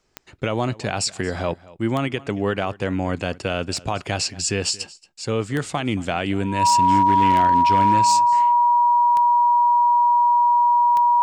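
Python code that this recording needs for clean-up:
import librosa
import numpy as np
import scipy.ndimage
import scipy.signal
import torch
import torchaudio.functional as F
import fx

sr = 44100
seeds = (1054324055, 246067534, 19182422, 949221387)

y = fx.fix_declip(x, sr, threshold_db=-10.5)
y = fx.fix_declick_ar(y, sr, threshold=10.0)
y = fx.notch(y, sr, hz=960.0, q=30.0)
y = fx.fix_echo_inverse(y, sr, delay_ms=227, level_db=-21.0)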